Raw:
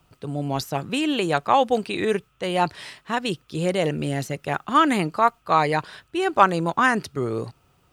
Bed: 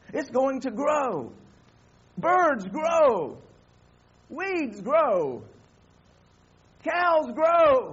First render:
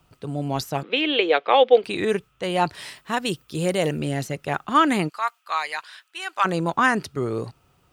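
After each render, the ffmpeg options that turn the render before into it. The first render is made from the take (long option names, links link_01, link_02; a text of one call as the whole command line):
ffmpeg -i in.wav -filter_complex "[0:a]asettb=1/sr,asplit=3[link_01][link_02][link_03];[link_01]atrim=end=0.834[link_04];[link_02]atrim=start=0.83:end=1.84,asetpts=PTS-STARTPTS,afade=type=in:duration=0.004:curve=qsin,afade=type=out:start_time=1.006:duration=0.004:curve=qsin,highpass=frequency=310:width=0.5412,highpass=frequency=310:width=1.3066,equalizer=frequency=480:width_type=q:width=4:gain=9,equalizer=frequency=1000:width_type=q:width=4:gain=-4,equalizer=frequency=2200:width_type=q:width=4:gain=9,equalizer=frequency=3400:width_type=q:width=4:gain=9,lowpass=frequency=4000:width=0.5412,lowpass=frequency=4000:width=1.3066[link_05];[link_03]atrim=start=1.836[link_06];[link_04][link_05]acrossfade=duration=0.004:curve1=hsin:curve2=qsin[link_07];[link_07][link_06]acrossfade=duration=0.004:curve1=qsin:curve2=hsin,asettb=1/sr,asplit=3[link_08][link_09][link_10];[link_08]atrim=end=2.734[link_11];[link_09]atrim=start=2.73:end=3.99,asetpts=PTS-STARTPTS,afade=type=in:duration=0.004:curve=qsin,afade=type=out:start_time=1.256:duration=0.004:curve=qsin,highshelf=frequency=9800:gain=12[link_12];[link_10]atrim=start=3.986[link_13];[link_11][link_12]acrossfade=duration=0.004:curve1=hsin:curve2=qsin[link_14];[link_14][link_13]acrossfade=duration=0.004:curve1=qsin:curve2=hsin,asplit=3[link_15][link_16][link_17];[link_15]afade=type=out:start_time=5.08:duration=0.02[link_18];[link_16]highpass=1400,afade=type=in:start_time=5.08:duration=0.02,afade=type=out:start_time=6.44:duration=0.02[link_19];[link_17]afade=type=in:start_time=6.44:duration=0.02[link_20];[link_18][link_19][link_20]amix=inputs=3:normalize=0" out.wav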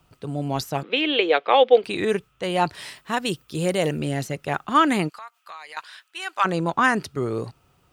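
ffmpeg -i in.wav -filter_complex "[0:a]asettb=1/sr,asplit=3[link_01][link_02][link_03];[link_01]atrim=end=5.154[link_04];[link_02]atrim=start=5.15:end=5.77,asetpts=PTS-STARTPTS,afade=type=in:duration=0.004:curve=qsin,afade=type=out:start_time=0.616:duration=0.004:curve=qsin,acompressor=threshold=-38dB:ratio=4:attack=3.2:release=140:knee=1:detection=peak[link_05];[link_03]atrim=start=5.766[link_06];[link_04][link_05]acrossfade=duration=0.004:curve1=hsin:curve2=qsin[link_07];[link_07][link_06]acrossfade=duration=0.004:curve1=qsin:curve2=hsin,asettb=1/sr,asplit=3[link_08][link_09][link_10];[link_08]atrim=end=6.424[link_11];[link_09]atrim=start=6.42:end=6.84,asetpts=PTS-STARTPTS,afade=type=in:duration=0.004:curve=qsin,afade=type=out:start_time=0.416:duration=0.004:curve=qsin,highshelf=frequency=10000:gain=-7[link_12];[link_10]atrim=start=6.836[link_13];[link_11][link_12]acrossfade=duration=0.004:curve1=hsin:curve2=qsin[link_14];[link_14][link_13]acrossfade=duration=0.004:curve1=qsin:curve2=hsin" out.wav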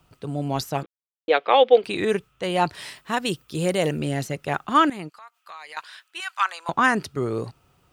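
ffmpeg -i in.wav -filter_complex "[0:a]asettb=1/sr,asplit=3[link_01][link_02][link_03];[link_01]atrim=end=6.204[link_04];[link_02]atrim=start=6.2:end=6.69,asetpts=PTS-STARTPTS,afade=type=in:duration=0.004:curve=qsin,afade=type=out:start_time=0.486:duration=0.004:curve=qsin,highpass=frequency=960:width=0.5412,highpass=frequency=960:width=1.3066[link_05];[link_03]atrim=start=6.686[link_06];[link_04][link_05]acrossfade=duration=0.004:curve1=hsin:curve2=qsin[link_07];[link_07][link_06]acrossfade=duration=0.004:curve1=qsin:curve2=hsin,asplit=4[link_08][link_09][link_10][link_11];[link_08]atrim=end=0.86,asetpts=PTS-STARTPTS,afade=type=out:start_time=0.856:duration=0.004:curve=hsin[link_12];[link_09]atrim=start=0.86:end=1.28,asetpts=PTS-STARTPTS,volume=0[link_13];[link_10]atrim=start=1.28:end=4.9,asetpts=PTS-STARTPTS,afade=type=in:duration=0.004:curve=hsin,afade=type=out:start_time=3.616:duration=0.004:curve=hsin:silence=0.149624[link_14];[link_11]atrim=start=4.9,asetpts=PTS-STARTPTS,afade=type=in:duration=0.74:silence=0.149624[link_15];[link_12][link_13][link_14][link_15]concat=n=4:v=0:a=1" out.wav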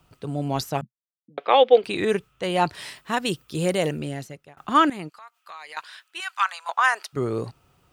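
ffmpeg -i in.wav -filter_complex "[0:a]asettb=1/sr,asplit=3[link_01][link_02][link_03];[link_01]atrim=end=0.814[link_04];[link_02]atrim=start=0.81:end=1.38,asetpts=PTS-STARTPTS,afade=type=in:duration=0.004:curve=qsin,afade=type=out:start_time=0.566:duration=0.004:curve=qsin,asuperpass=centerf=170:order=8:qfactor=1.6[link_05];[link_03]atrim=start=1.376[link_06];[link_04][link_05]acrossfade=duration=0.004:curve1=hsin:curve2=qsin[link_07];[link_07][link_06]acrossfade=duration=0.004:curve1=qsin:curve2=hsin,asettb=1/sr,asplit=3[link_08][link_09][link_10];[link_08]atrim=end=6.364[link_11];[link_09]atrim=start=6.36:end=7.13,asetpts=PTS-STARTPTS,afade=type=in:duration=0.004:curve=qsin,afade=type=out:start_time=0.766:duration=0.004:curve=qsin,highpass=frequency=690:width=0.5412,highpass=frequency=690:width=1.3066[link_12];[link_10]atrim=start=7.126[link_13];[link_11][link_12]acrossfade=duration=0.004:curve1=hsin:curve2=qsin[link_14];[link_14][link_13]acrossfade=duration=0.004:curve1=qsin:curve2=hsin,asplit=2[link_15][link_16];[link_15]atrim=end=4.57,asetpts=PTS-STARTPTS,afade=type=out:start_time=3.73:duration=0.84[link_17];[link_16]atrim=start=4.57,asetpts=PTS-STARTPTS,afade=type=in:duration=0.004:curve=hsin[link_18];[link_17][link_18]concat=n=2:v=0:a=1" out.wav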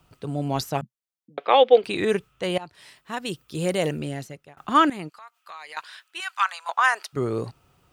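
ffmpeg -i in.wav -filter_complex "[0:a]asplit=2[link_01][link_02];[link_01]atrim=end=2.58,asetpts=PTS-STARTPTS,afade=type=out:start_time=2.576:duration=0.004:curve=hsin:silence=0.0891251[link_03];[link_02]atrim=start=2.58,asetpts=PTS-STARTPTS,afade=type=in:duration=1.34:silence=0.0891251[link_04];[link_03][link_04]concat=n=2:v=0:a=1" out.wav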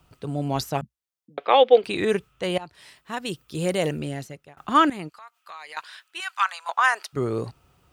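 ffmpeg -i in.wav -af "equalizer=frequency=62:width=3.5:gain=7" out.wav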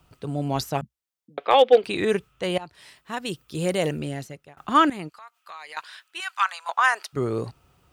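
ffmpeg -i in.wav -af "asoftclip=type=hard:threshold=-7dB" out.wav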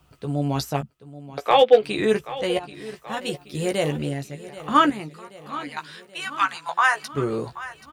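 ffmpeg -i in.wav -filter_complex "[0:a]asplit=2[link_01][link_02];[link_02]adelay=14,volume=-6dB[link_03];[link_01][link_03]amix=inputs=2:normalize=0,aecho=1:1:780|1560|2340|3120|3900:0.158|0.0888|0.0497|0.0278|0.0156" out.wav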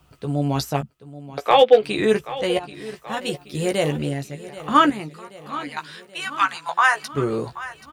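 ffmpeg -i in.wav -af "volume=2dB,alimiter=limit=-3dB:level=0:latency=1" out.wav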